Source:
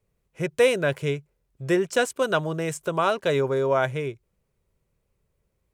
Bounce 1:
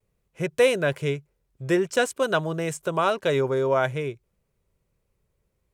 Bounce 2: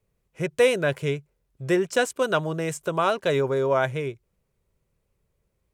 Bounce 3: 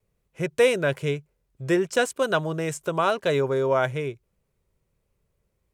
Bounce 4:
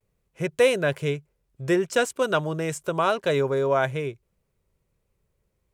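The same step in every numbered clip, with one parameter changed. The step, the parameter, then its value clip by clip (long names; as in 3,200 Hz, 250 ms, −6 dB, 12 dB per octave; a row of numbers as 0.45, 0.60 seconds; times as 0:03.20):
pitch vibrato, speed: 0.51, 7.1, 1, 0.33 Hertz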